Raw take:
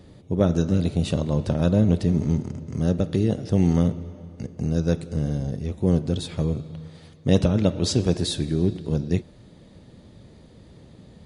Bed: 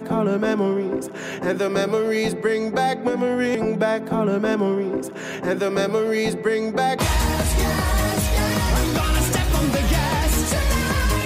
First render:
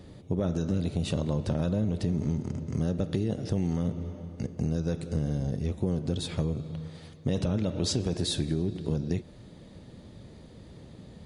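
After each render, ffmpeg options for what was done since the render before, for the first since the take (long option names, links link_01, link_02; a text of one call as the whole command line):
ffmpeg -i in.wav -af "alimiter=limit=-13dB:level=0:latency=1:release=10,acompressor=threshold=-24dB:ratio=6" out.wav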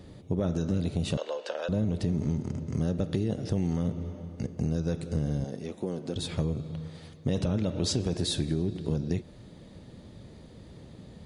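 ffmpeg -i in.wav -filter_complex "[0:a]asettb=1/sr,asplit=3[link_01][link_02][link_03];[link_01]atrim=end=1.174[link_04];[link_02]atrim=start=1.17:end=1.69,asetpts=PTS-STARTPTS,afade=type=in:duration=0.004:curve=qsin,afade=type=out:start_time=0.516:duration=0.004:curve=qsin,highpass=frequency=490:width=0.5412,highpass=frequency=490:width=1.3066,equalizer=frequency=500:width_type=q:width=4:gain=6,equalizer=frequency=1600:width_type=q:width=4:gain=8,equalizer=frequency=2900:width_type=q:width=4:gain=9,equalizer=frequency=4700:width_type=q:width=4:gain=3,lowpass=frequency=8000:width=0.5412,lowpass=frequency=8000:width=1.3066[link_05];[link_03]atrim=start=1.686[link_06];[link_04][link_05]acrossfade=duration=0.004:curve1=hsin:curve2=qsin[link_07];[link_07][link_06]acrossfade=duration=0.004:curve1=qsin:curve2=hsin,asettb=1/sr,asplit=3[link_08][link_09][link_10];[link_08]atrim=end=5.444[link_11];[link_09]atrim=start=5.44:end=6.16,asetpts=PTS-STARTPTS,afade=type=in:duration=0.004:curve=qsin,afade=type=out:start_time=0.716:duration=0.004:curve=qsin,highpass=250[link_12];[link_10]atrim=start=6.156[link_13];[link_11][link_12]acrossfade=duration=0.004:curve1=hsin:curve2=qsin[link_14];[link_14][link_13]acrossfade=duration=0.004:curve1=qsin:curve2=hsin" out.wav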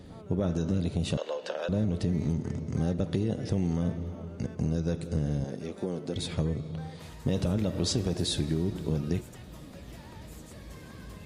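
ffmpeg -i in.wav -i bed.wav -filter_complex "[1:a]volume=-29dB[link_01];[0:a][link_01]amix=inputs=2:normalize=0" out.wav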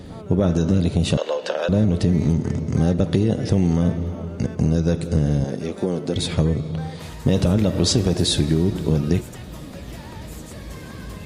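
ffmpeg -i in.wav -af "volume=10dB" out.wav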